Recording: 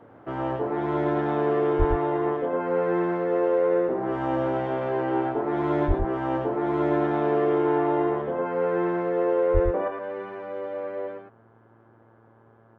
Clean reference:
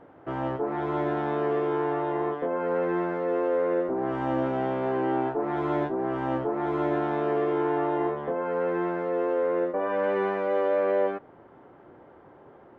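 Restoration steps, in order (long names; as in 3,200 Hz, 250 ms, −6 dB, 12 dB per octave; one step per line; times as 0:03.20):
hum removal 113.1 Hz, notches 15
0:01.78–0:01.90: high-pass filter 140 Hz 24 dB per octave
0:05.87–0:05.99: high-pass filter 140 Hz 24 dB per octave
0:09.53–0:09.65: high-pass filter 140 Hz 24 dB per octave
echo removal 109 ms −4.5 dB
level 0 dB, from 0:09.88 +10 dB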